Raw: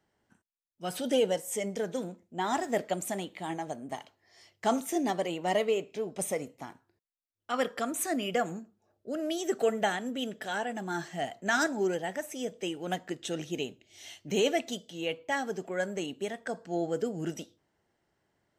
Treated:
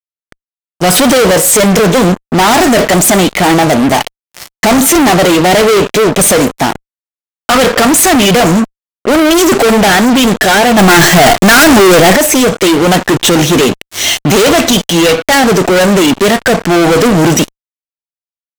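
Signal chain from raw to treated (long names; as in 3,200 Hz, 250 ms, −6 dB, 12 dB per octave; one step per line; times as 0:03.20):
fuzz pedal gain 49 dB, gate −52 dBFS
0:10.78–0:12.16: leveller curve on the samples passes 5
level +7.5 dB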